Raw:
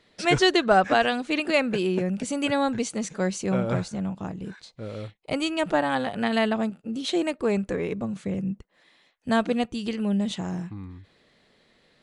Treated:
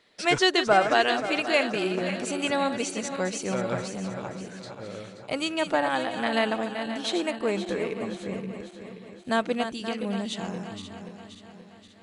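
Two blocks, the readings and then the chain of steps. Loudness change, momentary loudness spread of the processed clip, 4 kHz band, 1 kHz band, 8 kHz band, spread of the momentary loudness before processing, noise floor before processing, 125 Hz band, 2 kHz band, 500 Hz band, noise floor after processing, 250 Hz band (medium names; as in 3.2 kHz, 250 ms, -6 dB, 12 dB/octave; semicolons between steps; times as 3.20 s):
-1.5 dB, 18 LU, +1.0 dB, -0.5 dB, +1.0 dB, 16 LU, -64 dBFS, -6.5 dB, +0.5 dB, -1.0 dB, -50 dBFS, -4.5 dB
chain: backward echo that repeats 264 ms, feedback 69%, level -9 dB; bass shelf 230 Hz -11.5 dB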